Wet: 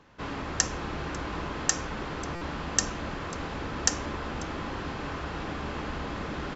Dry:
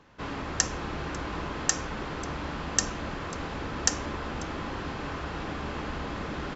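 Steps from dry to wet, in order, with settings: stuck buffer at 2.35, samples 256, times 10

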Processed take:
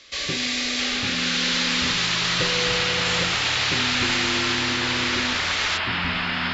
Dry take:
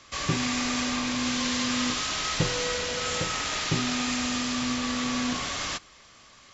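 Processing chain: graphic EQ 125/500/1000/2000/4000 Hz -5/+7/-8/+7/+11 dB; echoes that change speed 0.619 s, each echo -6 st, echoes 3; gain -3 dB

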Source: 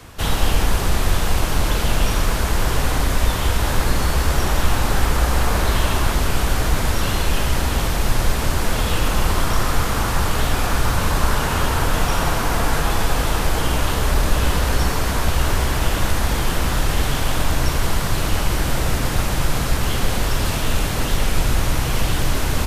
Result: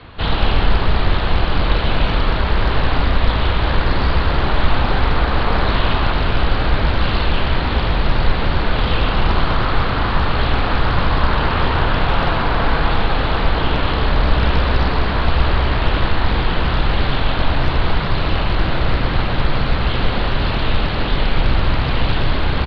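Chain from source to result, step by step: Chebyshev low-pass 4300 Hz, order 6; tapped delay 0.123/0.142 s -10/-12.5 dB; Doppler distortion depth 0.46 ms; gain +3 dB

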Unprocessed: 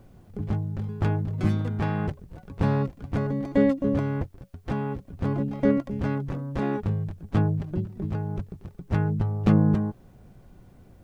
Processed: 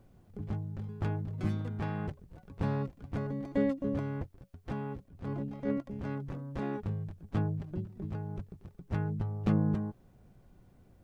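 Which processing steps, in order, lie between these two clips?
5.04–6.22 transient shaper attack -8 dB, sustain -2 dB; gain -8.5 dB

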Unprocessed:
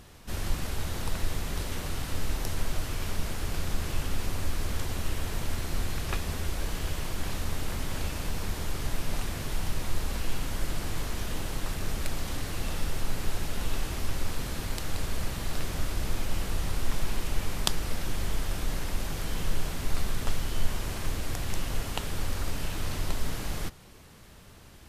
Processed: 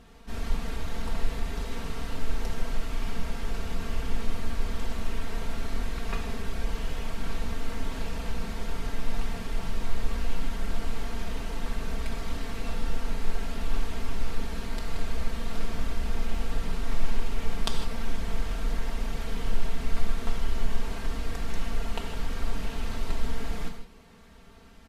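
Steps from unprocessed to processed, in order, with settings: LPF 3000 Hz 6 dB/oct; comb 4.4 ms, depth 78%; non-linear reverb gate 0.18 s flat, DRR 4.5 dB; gain -3 dB

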